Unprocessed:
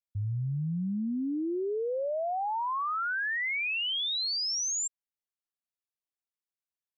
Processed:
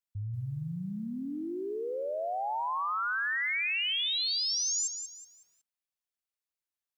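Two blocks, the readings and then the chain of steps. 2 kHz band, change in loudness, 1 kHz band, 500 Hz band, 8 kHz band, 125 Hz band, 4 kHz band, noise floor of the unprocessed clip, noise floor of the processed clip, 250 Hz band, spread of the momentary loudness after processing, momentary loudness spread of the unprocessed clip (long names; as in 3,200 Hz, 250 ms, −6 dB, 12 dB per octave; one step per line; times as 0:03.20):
0.0 dB, −0.5 dB, −1.0 dB, −3.0 dB, can't be measured, −4.5 dB, +0.5 dB, below −85 dBFS, below −85 dBFS, −5.0 dB, 10 LU, 5 LU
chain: parametric band 220 Hz −6 dB 3 octaves
feedback echo at a low word length 185 ms, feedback 35%, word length 11 bits, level −8 dB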